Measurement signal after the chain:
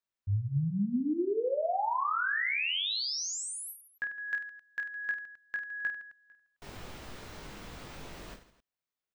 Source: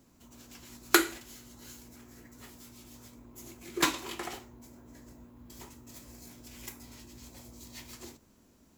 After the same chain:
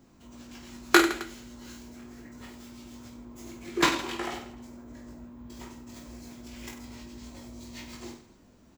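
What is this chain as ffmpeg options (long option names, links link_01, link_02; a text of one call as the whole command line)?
ffmpeg -i in.wav -af "equalizer=frequency=14000:width=0.45:gain=-14,aecho=1:1:20|50|95|162.5|263.8:0.631|0.398|0.251|0.158|0.1,volume=3.5dB" out.wav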